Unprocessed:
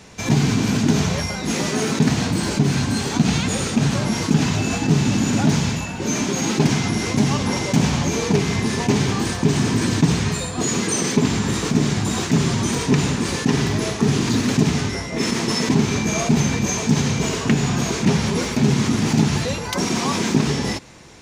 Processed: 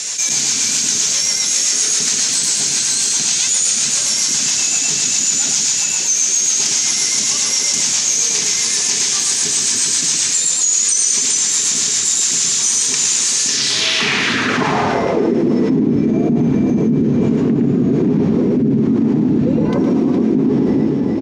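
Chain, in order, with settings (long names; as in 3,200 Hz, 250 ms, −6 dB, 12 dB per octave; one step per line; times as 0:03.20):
band-pass filter sweep 7,100 Hz → 290 Hz, 0:13.36–0:15.46
rotating-speaker cabinet horn 7.5 Hz, later 1.2 Hz, at 0:12.04
on a send: multi-tap delay 113/415 ms −3/−8 dB
on the sum: boost into a limiter +20.5 dB
envelope flattener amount 70%
level −8 dB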